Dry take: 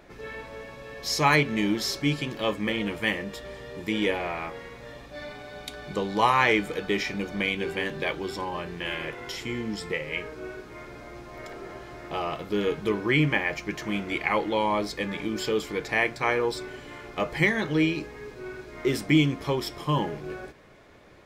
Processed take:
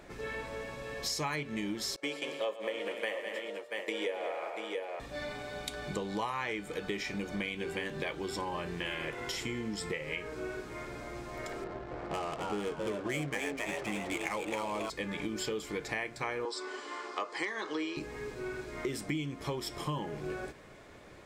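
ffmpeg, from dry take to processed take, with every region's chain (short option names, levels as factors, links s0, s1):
-filter_complex "[0:a]asettb=1/sr,asplit=3[s0][s1][s2];[s0]atrim=end=1.964[s3];[s1]atrim=start=1.96:end=5,asetpts=PTS-STARTPTS,afade=t=in:d=0.004:c=qsin,afade=t=out:st=3.036:d=0.004:c=qsin,agate=range=0.0224:threshold=0.0316:ratio=3:release=100:detection=peak,highpass=f=520:t=q:w=2.7,aecho=1:1:115|201|289|684:0.188|0.266|0.106|0.251,atrim=end_sample=134064[s4];[s2]atrim=start=4.996[s5];[s3][s4]acrossfade=d=0.004:c1=hsin:c2=qsin[s6];[s6][s5]acrossfade=d=0.004:c1=qsin:c2=hsin,asettb=1/sr,asplit=3[s7][s8][s9];[s7]atrim=end=11.644[s10];[s8]atrim=start=11.64:end=14.9,asetpts=PTS-STARTPTS,afade=t=in:d=0.004:c=qsin,afade=t=out:st=3.256:d=0.004:c=qsin,adynamicsmooth=sensitivity=7.5:basefreq=670,asplit=7[s11][s12][s13][s14][s15][s16][s17];[s12]adelay=270,afreqshift=130,volume=0.631[s18];[s13]adelay=540,afreqshift=260,volume=0.302[s19];[s14]adelay=810,afreqshift=390,volume=0.145[s20];[s15]adelay=1080,afreqshift=520,volume=0.07[s21];[s16]adelay=1350,afreqshift=650,volume=0.0335[s22];[s17]adelay=1620,afreqshift=780,volume=0.016[s23];[s11][s18][s19][s20][s21][s22][s23]amix=inputs=7:normalize=0,atrim=end_sample=143766[s24];[s9]atrim=start=14.896[s25];[s10][s24]acrossfade=d=0.004:c1=hsin:c2=qsin[s26];[s26][s25]acrossfade=d=0.004:c1=qsin:c2=hsin,asettb=1/sr,asplit=3[s27][s28][s29];[s27]atrim=end=16.454[s30];[s28]atrim=start=16.45:end=17.97,asetpts=PTS-STARTPTS,afade=t=in:d=0.004:c=qsin,afade=t=out:st=1.516:d=0.004:c=qsin,volume=2.99,asoftclip=hard,volume=0.335,highpass=f=320:w=0.5412,highpass=f=320:w=1.3066,equalizer=f=580:t=q:w=4:g=-4,equalizer=f=1100:t=q:w=4:g=9,equalizer=f=2400:t=q:w=4:g=-4,equalizer=f=4800:t=q:w=4:g=6,lowpass=f=8500:w=0.5412,lowpass=f=8500:w=1.3066[s31];[s29]atrim=start=17.966[s32];[s30][s31]acrossfade=d=0.004:c1=hsin:c2=qsin[s33];[s33][s32]acrossfade=d=0.004:c1=qsin:c2=hsin,equalizer=f=8100:t=o:w=0.52:g=6.5,acompressor=threshold=0.0224:ratio=6"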